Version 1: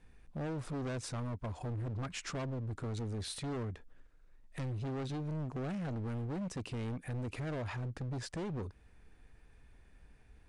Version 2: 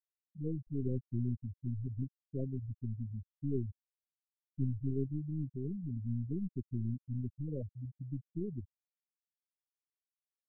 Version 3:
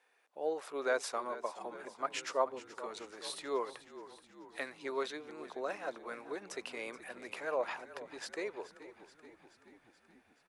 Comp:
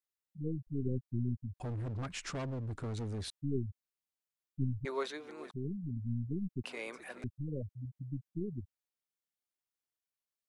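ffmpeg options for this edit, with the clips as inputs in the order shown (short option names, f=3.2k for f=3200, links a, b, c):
-filter_complex "[2:a]asplit=2[a][b];[1:a]asplit=4[c][d][e][f];[c]atrim=end=1.602[g];[0:a]atrim=start=1.598:end=3.302[h];[d]atrim=start=3.298:end=4.852[i];[a]atrim=start=4.848:end=5.512[j];[e]atrim=start=5.508:end=6.642[k];[b]atrim=start=6.638:end=7.242[l];[f]atrim=start=7.238[m];[g][h]acrossfade=d=0.004:c1=hsin:c2=hsin[n];[n][i]acrossfade=d=0.004:c1=hsin:c2=hsin[o];[o][j]acrossfade=d=0.004:c1=hsin:c2=hsin[p];[p][k]acrossfade=d=0.004:c1=hsin:c2=hsin[q];[q][l]acrossfade=d=0.004:c1=hsin:c2=hsin[r];[r][m]acrossfade=d=0.004:c1=hsin:c2=hsin"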